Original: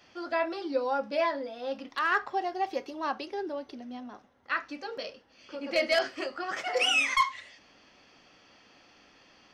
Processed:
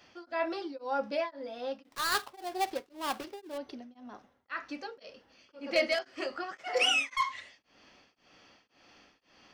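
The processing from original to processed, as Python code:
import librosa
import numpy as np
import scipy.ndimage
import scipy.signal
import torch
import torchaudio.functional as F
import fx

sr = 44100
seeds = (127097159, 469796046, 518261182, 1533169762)

y = fx.dead_time(x, sr, dead_ms=0.19, at=(1.83, 3.58))
y = y * np.abs(np.cos(np.pi * 1.9 * np.arange(len(y)) / sr))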